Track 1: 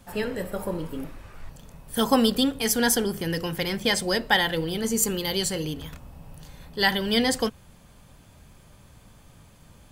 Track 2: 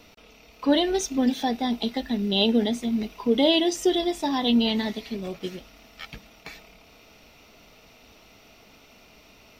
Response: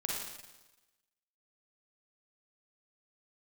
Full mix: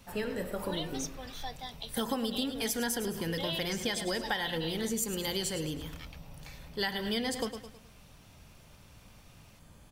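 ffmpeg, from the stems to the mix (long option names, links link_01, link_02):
-filter_complex "[0:a]volume=-4.5dB,asplit=2[link_01][link_02];[link_02]volume=-12dB[link_03];[1:a]highpass=680,highshelf=frequency=4100:gain=6.5,volume=-12dB[link_04];[link_03]aecho=0:1:106|212|318|424|530:1|0.38|0.144|0.0549|0.0209[link_05];[link_01][link_04][link_05]amix=inputs=3:normalize=0,acompressor=threshold=-29dB:ratio=6"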